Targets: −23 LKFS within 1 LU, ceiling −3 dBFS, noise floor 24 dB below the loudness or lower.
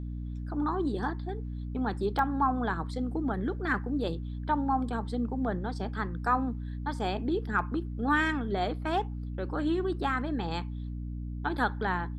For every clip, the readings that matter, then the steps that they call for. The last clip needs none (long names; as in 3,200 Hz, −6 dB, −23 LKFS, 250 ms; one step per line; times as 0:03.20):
number of dropouts 2; longest dropout 1.9 ms; mains hum 60 Hz; hum harmonics up to 300 Hz; level of the hum −34 dBFS; integrated loudness −31.5 LKFS; sample peak −14.0 dBFS; target loudness −23.0 LKFS
→ repair the gap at 0:02.19/0:07.59, 1.9 ms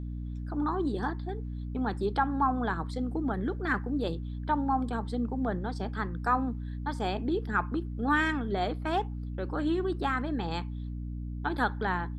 number of dropouts 0; mains hum 60 Hz; hum harmonics up to 300 Hz; level of the hum −34 dBFS
→ mains-hum notches 60/120/180/240/300 Hz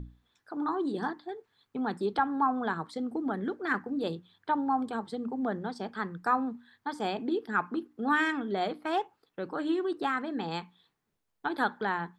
mains hum none found; integrated loudness −32.0 LKFS; sample peak −15.0 dBFS; target loudness −23.0 LKFS
→ level +9 dB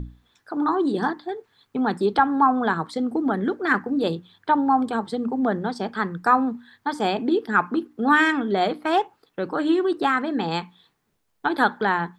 integrated loudness −23.0 LKFS; sample peak −6.0 dBFS; background noise floor −70 dBFS